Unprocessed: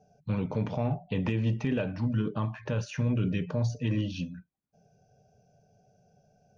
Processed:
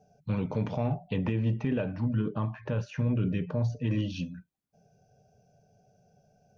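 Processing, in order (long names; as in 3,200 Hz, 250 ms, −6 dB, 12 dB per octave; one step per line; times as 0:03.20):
0:01.16–0:03.91: low-pass filter 2,100 Hz 6 dB per octave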